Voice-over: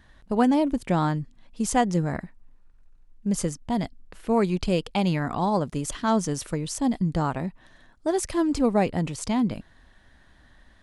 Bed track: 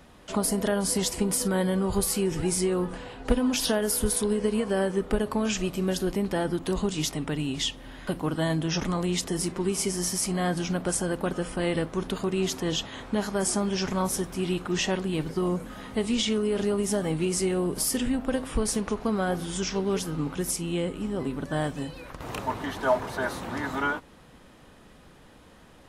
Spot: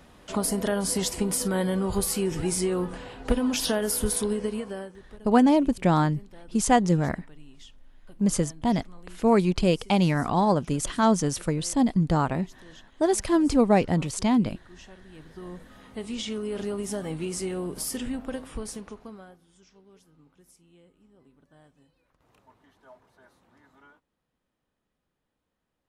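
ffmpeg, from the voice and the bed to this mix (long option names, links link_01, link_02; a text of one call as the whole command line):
ffmpeg -i stem1.wav -i stem2.wav -filter_complex "[0:a]adelay=4950,volume=2dB[link_01];[1:a]volume=17dB,afade=type=out:start_time=4.23:duration=0.74:silence=0.0794328,afade=type=in:start_time=15.06:duration=1.5:silence=0.133352,afade=type=out:start_time=18.16:duration=1.22:silence=0.0630957[link_02];[link_01][link_02]amix=inputs=2:normalize=0" out.wav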